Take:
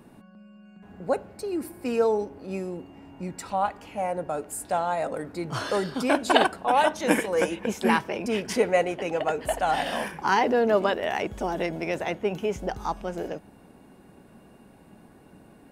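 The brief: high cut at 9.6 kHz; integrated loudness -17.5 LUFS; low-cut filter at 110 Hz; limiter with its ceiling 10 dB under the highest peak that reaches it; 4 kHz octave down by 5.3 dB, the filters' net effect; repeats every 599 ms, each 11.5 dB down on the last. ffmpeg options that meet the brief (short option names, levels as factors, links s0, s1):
-af "highpass=110,lowpass=9600,equalizer=f=4000:t=o:g=-8,alimiter=limit=0.178:level=0:latency=1,aecho=1:1:599|1198|1797:0.266|0.0718|0.0194,volume=3.35"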